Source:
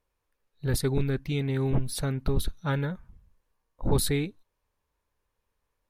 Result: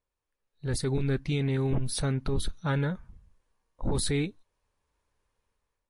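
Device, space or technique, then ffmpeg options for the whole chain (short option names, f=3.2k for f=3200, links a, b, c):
low-bitrate web radio: -af "dynaudnorm=f=320:g=5:m=11dB,alimiter=limit=-12dB:level=0:latency=1:release=21,volume=-7.5dB" -ar 24000 -c:a libmp3lame -b:a 48k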